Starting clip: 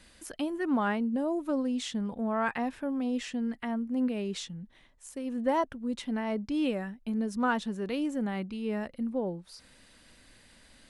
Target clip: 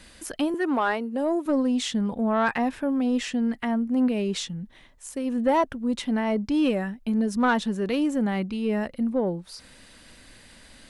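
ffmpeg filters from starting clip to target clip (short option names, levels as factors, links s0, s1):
-filter_complex "[0:a]asettb=1/sr,asplit=3[s0][s1][s2];[s0]atrim=end=0.544[s3];[s1]atrim=start=0.54:end=1.46,asetpts=PTS-STARTPTS,afade=t=in:d=0.004:c=qsin,afade=t=out:st=0.916:d=0.004:c=qsin,highpass=f=300:w=0.5412,highpass=f=300:w=1.3066[s4];[s2]atrim=start=1.456[s5];[s3][s4]acrossfade=d=0.004:c1=hsin:c2=qsin[s6];[s6][s5]acrossfade=d=0.004:c1=qsin:c2=hsin,asoftclip=type=tanh:threshold=0.0944,volume=2.37"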